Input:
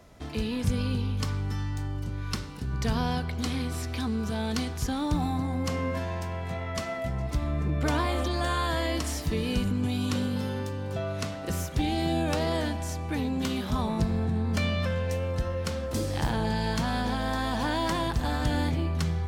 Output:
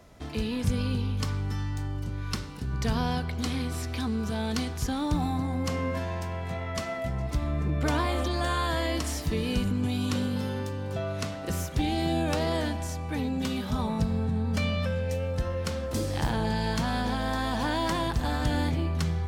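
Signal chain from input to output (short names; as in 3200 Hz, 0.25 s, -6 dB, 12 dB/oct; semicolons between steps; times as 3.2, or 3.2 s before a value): 12.87–15.38 notch comb 350 Hz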